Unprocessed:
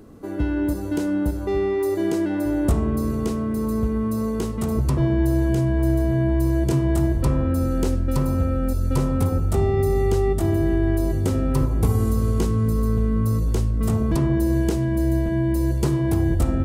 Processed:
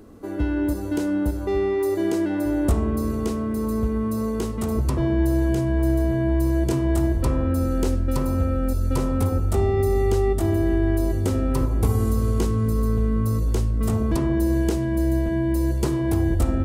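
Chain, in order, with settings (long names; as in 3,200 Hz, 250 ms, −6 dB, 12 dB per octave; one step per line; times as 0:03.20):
parametric band 150 Hz −8.5 dB 0.42 octaves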